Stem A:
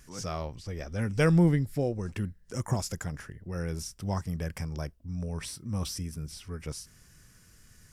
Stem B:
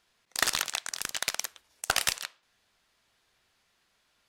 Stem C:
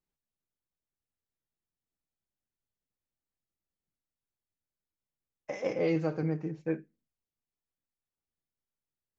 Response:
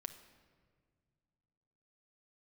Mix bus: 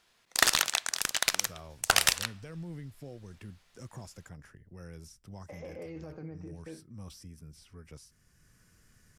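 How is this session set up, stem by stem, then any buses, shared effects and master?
-13.5 dB, 1.25 s, bus A, no send, three-band squash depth 40%
+2.0 dB, 0.00 s, no bus, send -13 dB, dry
-8.0 dB, 0.00 s, bus A, no send, dry
bus A: 0.0 dB, limiter -35 dBFS, peak gain reduction 10.5 dB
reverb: on, pre-delay 6 ms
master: dry

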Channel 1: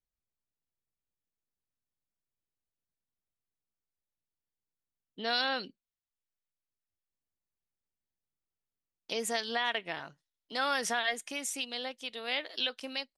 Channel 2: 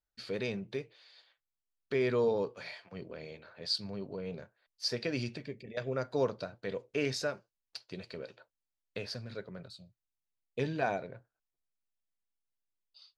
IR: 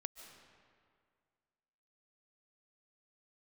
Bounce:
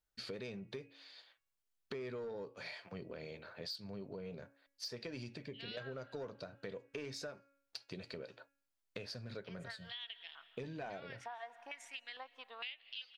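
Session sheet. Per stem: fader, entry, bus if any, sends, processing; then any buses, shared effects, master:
+1.5 dB, 0.35 s, send -9 dB, transient shaper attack +4 dB, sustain -5 dB; stepped band-pass 2.2 Hz 870–3300 Hz; auto duck -11 dB, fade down 0.25 s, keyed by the second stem
+2.0 dB, 0.00 s, no send, de-hum 278.2 Hz, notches 10; soft clip -24.5 dBFS, distortion -17 dB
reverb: on, RT60 2.1 s, pre-delay 0.105 s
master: compressor 6:1, threshold -43 dBFS, peak gain reduction 15.5 dB

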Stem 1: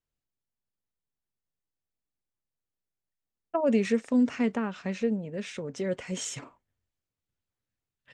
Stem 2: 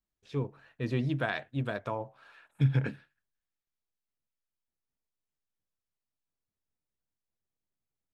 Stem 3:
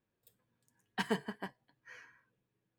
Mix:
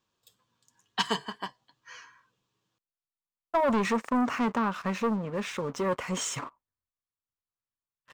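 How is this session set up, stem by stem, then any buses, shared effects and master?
-8.5 dB, 0.00 s, no send, sample leveller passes 3
off
+0.5 dB, 0.00 s, no send, band shelf 4600 Hz +13 dB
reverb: off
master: bell 1100 Hz +13 dB 0.76 oct

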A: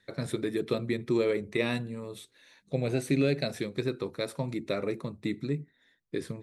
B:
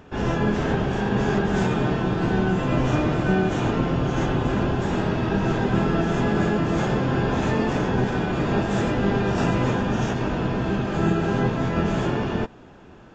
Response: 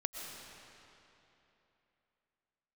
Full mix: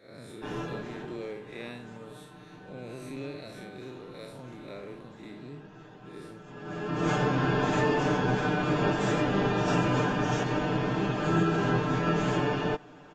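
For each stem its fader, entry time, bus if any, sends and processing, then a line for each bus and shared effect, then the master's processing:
0.0 dB, 0.00 s, no send, time blur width 0.127 s; compressor 1.5:1, threshold -50 dBFS, peak gain reduction 9.5 dB
-4.0 dB, 0.30 s, no send, comb 6.7 ms, depth 86%; auto duck -23 dB, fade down 1.50 s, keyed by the first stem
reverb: off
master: low shelf 140 Hz -9.5 dB

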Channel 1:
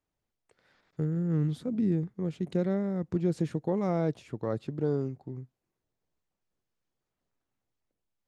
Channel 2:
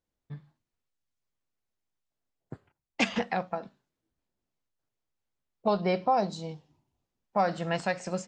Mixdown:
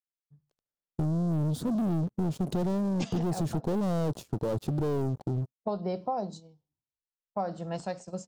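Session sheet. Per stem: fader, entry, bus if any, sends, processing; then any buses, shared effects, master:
-2.5 dB, 0.00 s, no send, sample leveller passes 5; gate -34 dBFS, range -8 dB
-2.0 dB, 0.00 s, no send, three-band expander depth 70%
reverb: off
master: gate -39 dBFS, range -11 dB; bell 2100 Hz -14.5 dB 1.4 oct; compressor, threshold -27 dBFS, peak gain reduction 7.5 dB

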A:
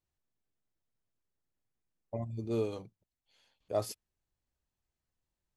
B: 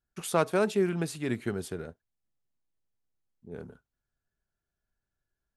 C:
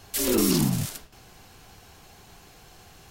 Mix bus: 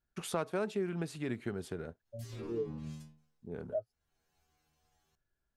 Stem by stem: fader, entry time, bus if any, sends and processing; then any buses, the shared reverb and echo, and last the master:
+1.5 dB, 0.00 s, no send, spectral expander 2.5:1
+1.5 dB, 0.00 s, no send, high shelf 6000 Hz -9 dB
-0.5 dB, 2.05 s, no send, power-law curve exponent 1.4; treble ducked by the level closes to 1700 Hz, closed at -20.5 dBFS; metallic resonator 76 Hz, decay 0.72 s, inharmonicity 0.002; auto duck -15 dB, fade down 0.40 s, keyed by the second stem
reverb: off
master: compressor 2:1, threshold -39 dBFS, peak gain reduction 11.5 dB

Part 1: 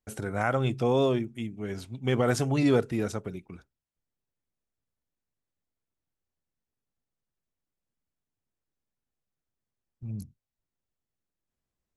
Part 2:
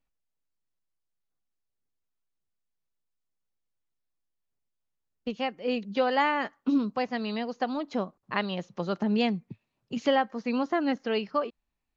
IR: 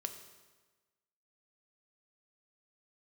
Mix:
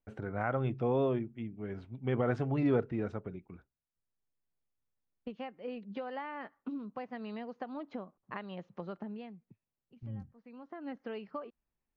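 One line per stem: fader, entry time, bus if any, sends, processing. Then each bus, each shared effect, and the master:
-5.5 dB, 0.00 s, no send, high shelf 4600 Hz -9 dB
-6.0 dB, 0.00 s, no send, compressor 6:1, threshold -31 dBFS, peak gain reduction 11.5 dB; auto duck -20 dB, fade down 1.05 s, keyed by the first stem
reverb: off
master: LPF 2300 Hz 12 dB/oct

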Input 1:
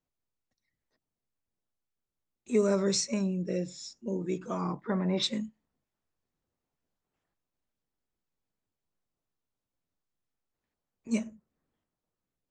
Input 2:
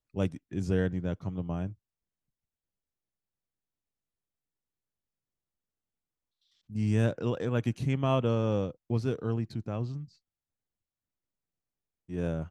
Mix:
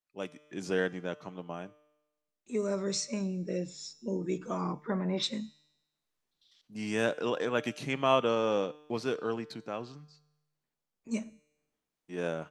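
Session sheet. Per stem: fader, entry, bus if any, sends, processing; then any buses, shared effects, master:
-5.5 dB, 0.00 s, no send, vocal rider 2 s
+2.5 dB, 0.00 s, no send, weighting filter A; auto duck -8 dB, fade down 1.65 s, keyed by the first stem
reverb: off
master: bell 92 Hz -11.5 dB 0.55 oct; resonator 150 Hz, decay 1 s, harmonics all, mix 50%; AGC gain up to 8.5 dB

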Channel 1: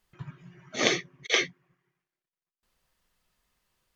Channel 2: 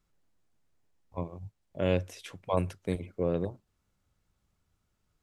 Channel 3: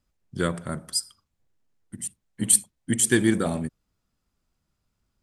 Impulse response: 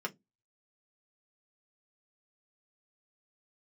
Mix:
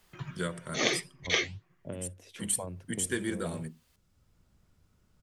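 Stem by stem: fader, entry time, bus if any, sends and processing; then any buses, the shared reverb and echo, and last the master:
+2.5 dB, 0.00 s, no send, flange 1.8 Hz, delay 3.8 ms, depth 6.6 ms, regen -85%
-10.5 dB, 0.10 s, no send, low shelf 480 Hz +11 dB; compressor 10:1, threshold -27 dBFS, peak gain reduction 14 dB
-12.0 dB, 0.00 s, send -7 dB, dry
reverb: on, RT60 0.15 s, pre-delay 3 ms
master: three-band squash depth 40%

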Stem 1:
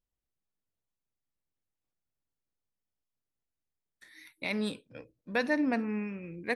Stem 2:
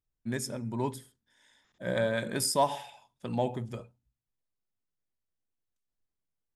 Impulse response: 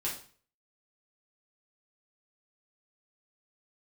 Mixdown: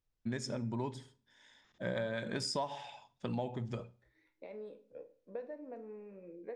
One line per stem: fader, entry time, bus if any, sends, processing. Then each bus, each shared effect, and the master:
-1.5 dB, 0.00 s, send -7.5 dB, compressor 6:1, threshold -36 dBFS, peak gain reduction 12.5 dB; band-pass 510 Hz, Q 3.2
+1.0 dB, 0.00 s, send -20.5 dB, LPF 6600 Hz 24 dB/oct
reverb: on, RT60 0.45 s, pre-delay 4 ms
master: compressor 5:1, threshold -34 dBFS, peak gain reduction 14.5 dB

